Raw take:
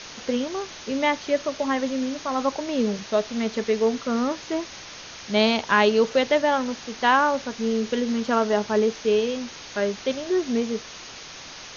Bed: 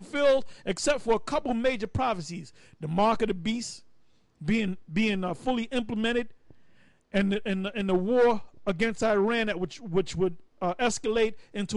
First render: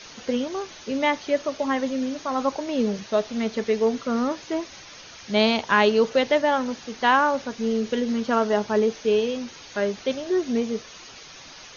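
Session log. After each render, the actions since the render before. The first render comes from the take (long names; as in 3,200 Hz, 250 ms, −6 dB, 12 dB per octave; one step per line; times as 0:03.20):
broadband denoise 7 dB, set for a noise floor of −41 dBFS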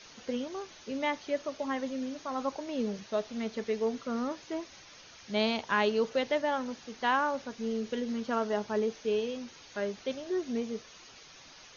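level −9 dB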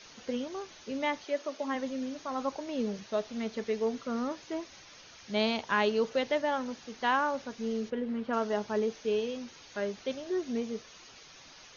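0:01.24–0:01.74: high-pass filter 340 Hz → 150 Hz 24 dB per octave
0:07.89–0:08.32: low-pass filter 1,800 Hz → 2,800 Hz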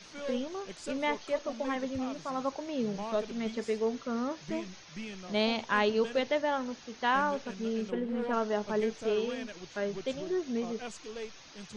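mix in bed −16 dB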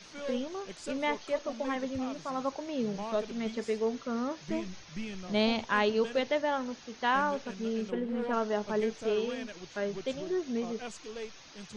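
0:04.50–0:05.65: low-shelf EQ 150 Hz +9 dB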